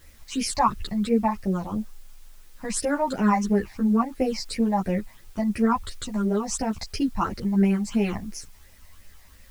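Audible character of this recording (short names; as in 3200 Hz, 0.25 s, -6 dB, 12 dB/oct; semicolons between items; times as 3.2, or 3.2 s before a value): phasing stages 8, 2.9 Hz, lowest notch 400–1200 Hz; a quantiser's noise floor 10-bit, dither triangular; a shimmering, thickened sound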